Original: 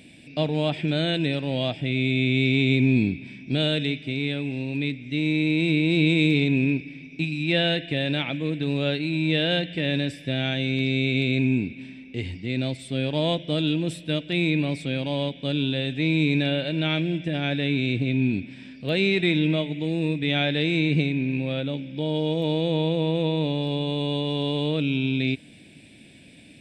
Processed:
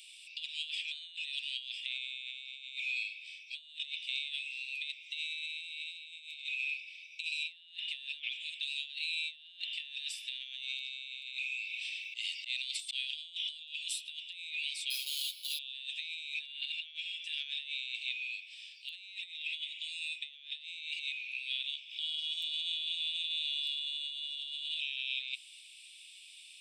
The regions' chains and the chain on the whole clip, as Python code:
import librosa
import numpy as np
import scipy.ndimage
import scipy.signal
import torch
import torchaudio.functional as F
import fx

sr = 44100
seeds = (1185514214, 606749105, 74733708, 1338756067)

y = fx.chain(x, sr, fx.auto_swell(attack_ms=158.0),
    fx.env_flatten(amount_pct=50), at=(11.29, 13.78))
y = fx.chain(y, sr, fx.highpass(hz=690.0, slope=12),
    fx.sample_hold(seeds[0], rate_hz=7500.0, jitter_pct=0),
    fx.ensemble(), at=(14.9, 15.59))
y = fx.chain(y, sr, fx.highpass(hz=900.0, slope=24),
    fx.pre_swell(db_per_s=98.0), at=(21.45, 22.03))
y = scipy.signal.sosfilt(scipy.signal.ellip(4, 1.0, 80, 2800.0, 'highpass', fs=sr, output='sos'), y)
y = fx.over_compress(y, sr, threshold_db=-39.0, ratio=-0.5)